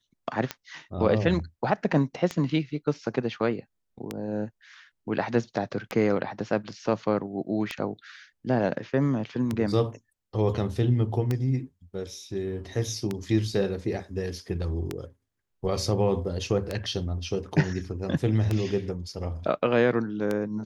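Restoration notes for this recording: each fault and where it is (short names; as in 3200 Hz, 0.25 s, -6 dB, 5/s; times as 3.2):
tick 33 1/3 rpm -14 dBFS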